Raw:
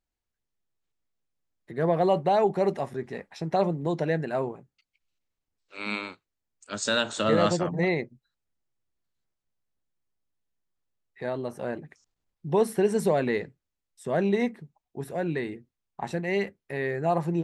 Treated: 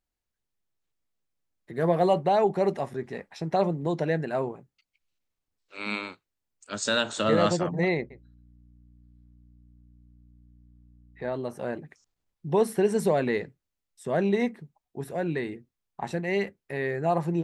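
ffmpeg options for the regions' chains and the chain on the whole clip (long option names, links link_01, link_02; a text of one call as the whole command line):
ffmpeg -i in.wav -filter_complex "[0:a]asettb=1/sr,asplit=3[link_01][link_02][link_03];[link_01]atrim=end=1.734[link_04];[link_02]atrim=start=1.73:end=2.14,asetpts=PTS-STARTPTS,afade=type=in:duration=0.004:curve=qsin,afade=type=out:start_time=0.406:duration=0.004:curve=qsin,highshelf=frequency=8100:gain=11.5,asplit=2[link_05][link_06];[link_06]adelay=17,volume=-12.5dB[link_07];[link_05][link_07]amix=inputs=2:normalize=0,atrim=end_sample=18081[link_08];[link_03]atrim=start=2.136[link_09];[link_04][link_08]acrossfade=duration=0.004:curve1=hsin:curve2=qsin[link_10];[link_10][link_09]acrossfade=duration=0.004:curve1=qsin:curve2=hsin,asettb=1/sr,asplit=3[link_11][link_12][link_13];[link_11]atrim=end=7.974[link_14];[link_12]atrim=start=7.97:end=11.33,asetpts=PTS-STARTPTS,afade=type=in:duration=0.004:curve=qsin,afade=type=out:start_time=3.356:duration=0.004:curve=qsin,lowpass=frequency=3000:poles=1,aeval=exprs='val(0)+0.00178*(sin(2*PI*60*n/s)+sin(2*PI*2*60*n/s)/2+sin(2*PI*3*60*n/s)/3+sin(2*PI*4*60*n/s)/4+sin(2*PI*5*60*n/s)/5)':channel_layout=same,aecho=1:1:133:0.141,atrim=end_sample=148176[link_15];[link_13]atrim=start=11.326[link_16];[link_14][link_15]acrossfade=duration=0.004:curve1=hsin:curve2=qsin[link_17];[link_17][link_16]acrossfade=duration=0.004:curve1=qsin:curve2=hsin" out.wav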